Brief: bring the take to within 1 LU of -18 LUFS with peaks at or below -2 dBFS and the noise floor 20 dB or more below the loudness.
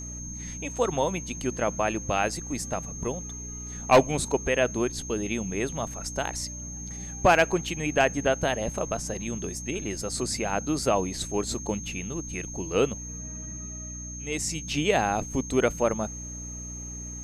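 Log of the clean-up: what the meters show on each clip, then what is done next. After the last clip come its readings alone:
hum 60 Hz; highest harmonic 300 Hz; hum level -37 dBFS; steady tone 6.4 kHz; tone level -38 dBFS; loudness -28.0 LUFS; peak level -9.5 dBFS; loudness target -18.0 LUFS
-> de-hum 60 Hz, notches 5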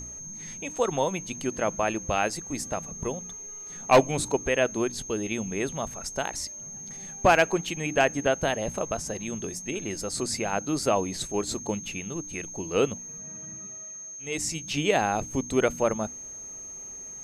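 hum not found; steady tone 6.4 kHz; tone level -38 dBFS
-> band-stop 6.4 kHz, Q 30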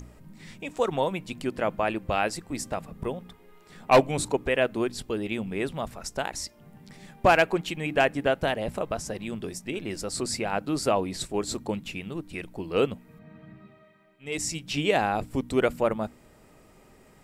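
steady tone not found; loudness -28.0 LUFS; peak level -9.0 dBFS; loudness target -18.0 LUFS
-> trim +10 dB; peak limiter -2 dBFS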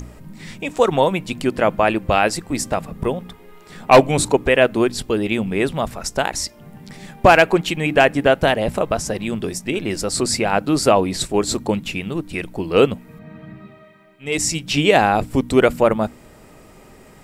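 loudness -18.5 LUFS; peak level -2.0 dBFS; noise floor -46 dBFS

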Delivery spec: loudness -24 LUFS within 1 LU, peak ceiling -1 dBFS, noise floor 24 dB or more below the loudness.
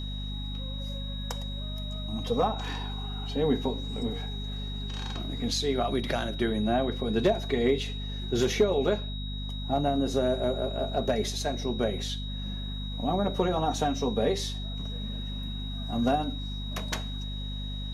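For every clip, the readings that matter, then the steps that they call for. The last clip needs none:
hum 50 Hz; highest harmonic 250 Hz; hum level -32 dBFS; steady tone 3.8 kHz; tone level -40 dBFS; loudness -30.0 LUFS; peak level -12.5 dBFS; loudness target -24.0 LUFS
-> de-hum 50 Hz, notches 5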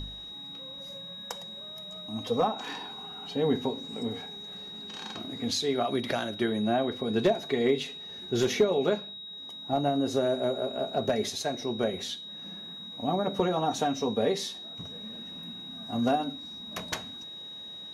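hum not found; steady tone 3.8 kHz; tone level -40 dBFS
-> band-stop 3.8 kHz, Q 30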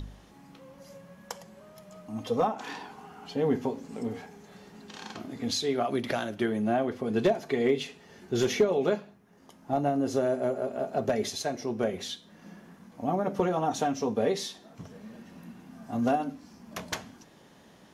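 steady tone not found; loudness -30.0 LUFS; peak level -13.5 dBFS; loudness target -24.0 LUFS
-> trim +6 dB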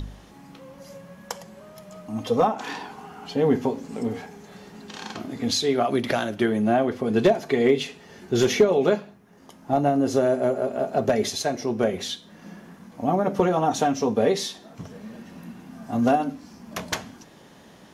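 loudness -24.0 LUFS; peak level -7.5 dBFS; noise floor -50 dBFS

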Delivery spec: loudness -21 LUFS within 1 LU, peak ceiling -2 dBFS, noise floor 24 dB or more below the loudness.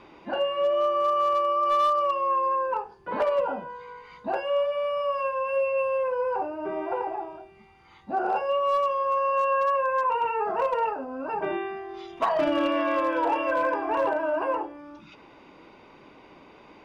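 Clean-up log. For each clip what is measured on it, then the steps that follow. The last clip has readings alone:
clipped samples 0.4%; clipping level -17.5 dBFS; loudness -26.0 LUFS; peak level -17.5 dBFS; loudness target -21.0 LUFS
-> clip repair -17.5 dBFS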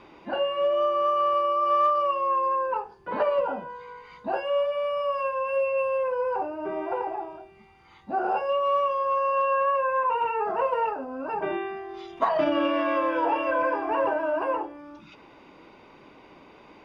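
clipped samples 0.0%; loudness -26.0 LUFS; peak level -10.5 dBFS; loudness target -21.0 LUFS
-> trim +5 dB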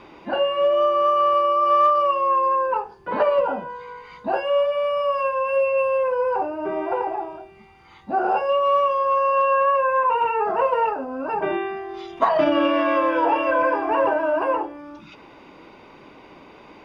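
loudness -21.0 LUFS; peak level -5.5 dBFS; noise floor -47 dBFS

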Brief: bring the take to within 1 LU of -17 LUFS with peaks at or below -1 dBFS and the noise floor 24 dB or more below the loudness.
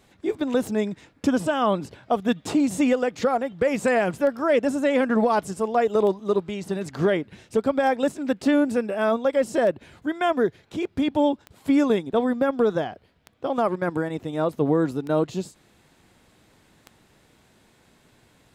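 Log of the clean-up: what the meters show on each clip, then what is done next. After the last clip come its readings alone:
clicks found 10; loudness -24.0 LUFS; peak level -10.5 dBFS; loudness target -17.0 LUFS
-> de-click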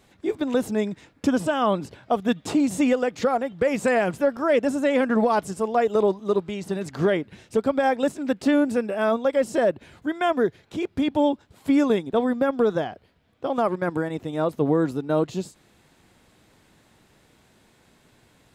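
clicks found 0; loudness -24.0 LUFS; peak level -11.0 dBFS; loudness target -17.0 LUFS
-> trim +7 dB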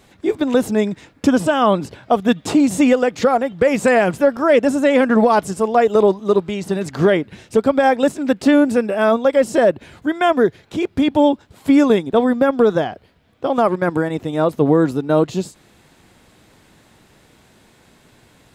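loudness -17.0 LUFS; peak level -4.0 dBFS; noise floor -53 dBFS

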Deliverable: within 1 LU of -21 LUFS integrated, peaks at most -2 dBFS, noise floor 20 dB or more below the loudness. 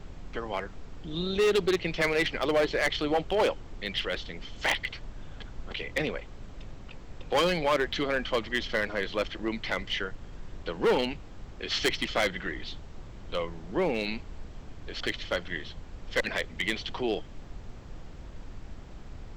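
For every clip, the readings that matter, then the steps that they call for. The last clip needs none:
clipped samples 1.5%; clipping level -20.0 dBFS; noise floor -45 dBFS; noise floor target -50 dBFS; loudness -30.0 LUFS; peak level -20.0 dBFS; loudness target -21.0 LUFS
-> clip repair -20 dBFS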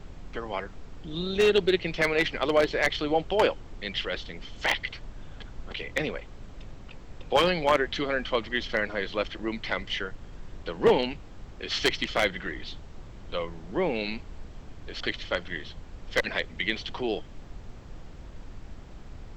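clipped samples 0.0%; noise floor -45 dBFS; noise floor target -48 dBFS
-> noise print and reduce 6 dB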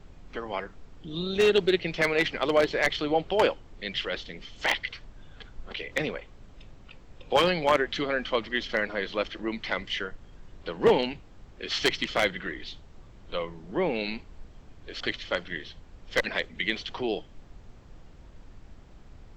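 noise floor -51 dBFS; loudness -28.0 LUFS; peak level -11.0 dBFS; loudness target -21.0 LUFS
-> trim +7 dB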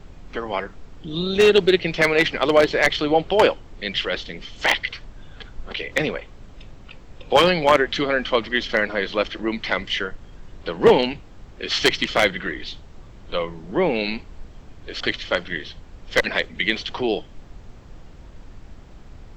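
loudness -21.0 LUFS; peak level -4.0 dBFS; noise floor -44 dBFS

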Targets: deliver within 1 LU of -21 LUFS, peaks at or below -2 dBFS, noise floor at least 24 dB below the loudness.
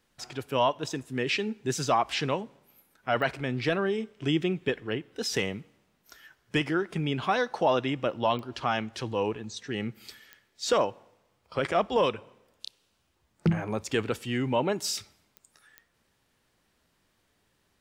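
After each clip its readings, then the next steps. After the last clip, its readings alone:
clicks found 5; loudness -29.5 LUFS; peak level -14.5 dBFS; loudness target -21.0 LUFS
-> de-click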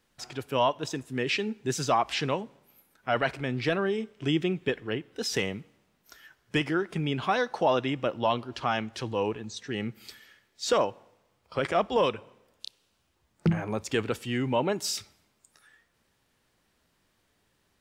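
clicks found 0; loudness -29.5 LUFS; peak level -14.5 dBFS; loudness target -21.0 LUFS
-> trim +8.5 dB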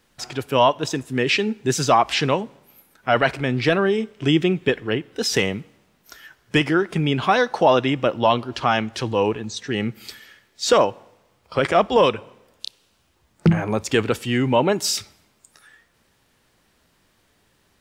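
loudness -21.0 LUFS; peak level -6.0 dBFS; noise floor -64 dBFS

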